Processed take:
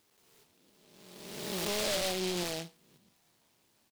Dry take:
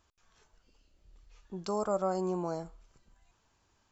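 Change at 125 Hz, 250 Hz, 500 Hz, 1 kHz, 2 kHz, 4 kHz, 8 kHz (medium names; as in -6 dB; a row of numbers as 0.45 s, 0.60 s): -2.0 dB, -2.0 dB, -2.5 dB, -5.5 dB, +14.5 dB, +19.0 dB, no reading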